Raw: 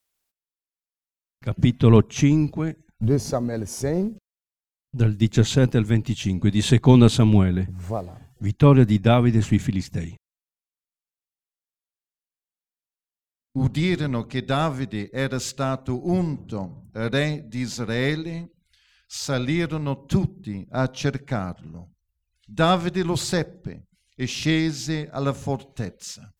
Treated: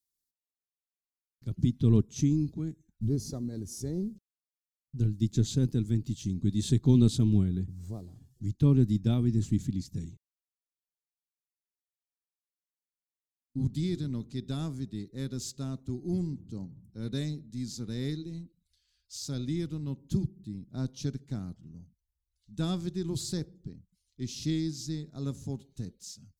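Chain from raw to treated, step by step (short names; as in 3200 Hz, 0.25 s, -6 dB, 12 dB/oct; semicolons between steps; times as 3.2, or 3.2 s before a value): band shelf 1200 Hz -15.5 dB 2.9 oct; gain -8 dB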